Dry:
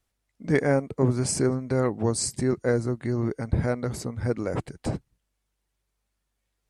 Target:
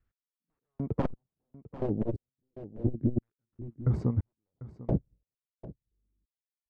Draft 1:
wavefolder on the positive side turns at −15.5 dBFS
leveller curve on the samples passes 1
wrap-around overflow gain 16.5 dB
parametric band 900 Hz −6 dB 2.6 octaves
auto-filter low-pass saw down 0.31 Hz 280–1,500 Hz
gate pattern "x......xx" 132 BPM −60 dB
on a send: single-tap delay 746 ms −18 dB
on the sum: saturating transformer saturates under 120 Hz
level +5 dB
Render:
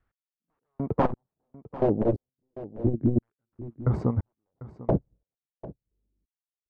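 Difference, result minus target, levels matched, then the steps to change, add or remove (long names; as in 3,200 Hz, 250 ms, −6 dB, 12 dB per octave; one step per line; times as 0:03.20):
1,000 Hz band +7.0 dB
change: parametric band 900 Hz −16.5 dB 2.6 octaves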